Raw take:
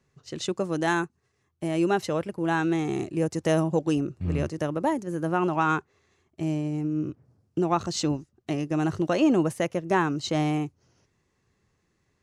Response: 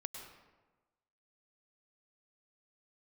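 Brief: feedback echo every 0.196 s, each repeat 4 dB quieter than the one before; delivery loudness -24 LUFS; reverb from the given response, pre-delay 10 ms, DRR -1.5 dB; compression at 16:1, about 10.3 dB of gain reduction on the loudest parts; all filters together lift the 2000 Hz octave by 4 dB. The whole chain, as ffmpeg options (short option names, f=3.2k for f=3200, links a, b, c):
-filter_complex "[0:a]equalizer=f=2k:t=o:g=5.5,acompressor=threshold=-27dB:ratio=16,aecho=1:1:196|392|588|784|980|1176|1372|1568|1764:0.631|0.398|0.25|0.158|0.0994|0.0626|0.0394|0.0249|0.0157,asplit=2[a][b];[1:a]atrim=start_sample=2205,adelay=10[c];[b][c]afir=irnorm=-1:irlink=0,volume=3.5dB[d];[a][d]amix=inputs=2:normalize=0,volume=3dB"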